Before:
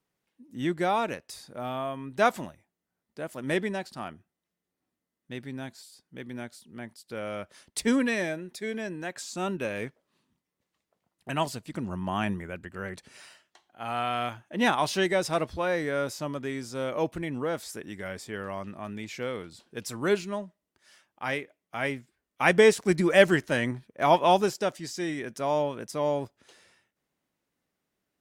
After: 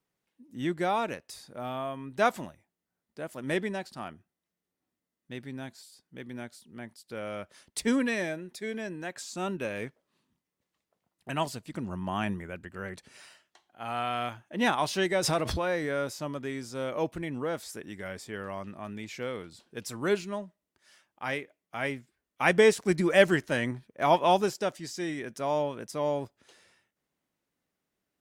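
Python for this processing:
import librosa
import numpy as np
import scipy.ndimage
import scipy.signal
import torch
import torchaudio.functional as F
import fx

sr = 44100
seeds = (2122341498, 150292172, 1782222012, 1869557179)

y = fx.pre_swell(x, sr, db_per_s=30.0, at=(15.22, 15.95), fade=0.02)
y = y * librosa.db_to_amplitude(-2.0)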